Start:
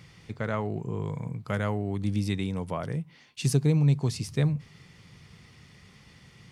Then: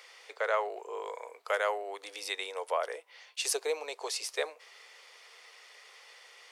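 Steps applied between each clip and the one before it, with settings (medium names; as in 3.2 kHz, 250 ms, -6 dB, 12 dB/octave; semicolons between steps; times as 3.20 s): steep high-pass 460 Hz 48 dB/octave; trim +3.5 dB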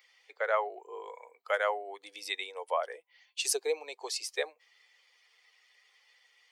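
expander on every frequency bin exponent 1.5; trim +2.5 dB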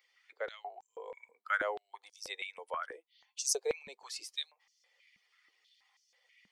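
step-sequenced high-pass 6.2 Hz 200–5900 Hz; trim -8 dB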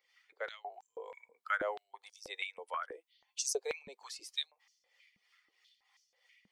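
harmonic tremolo 3.1 Hz, depth 70%, crossover 820 Hz; trim +2.5 dB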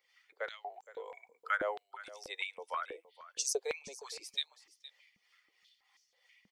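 delay 466 ms -17 dB; trim +1 dB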